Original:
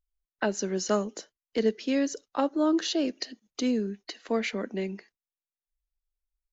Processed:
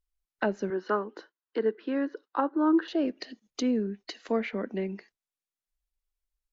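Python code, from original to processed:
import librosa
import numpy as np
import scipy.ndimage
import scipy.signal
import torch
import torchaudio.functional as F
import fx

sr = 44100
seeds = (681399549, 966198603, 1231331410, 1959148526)

y = fx.cabinet(x, sr, low_hz=330.0, low_slope=12, high_hz=3800.0, hz=(330.0, 630.0, 1000.0, 1500.0, 2300.0, 3300.0), db=(6, -7, 6, 7, -8, -5), at=(0.7, 2.88))
y = fx.env_lowpass_down(y, sr, base_hz=2000.0, full_db=-27.0)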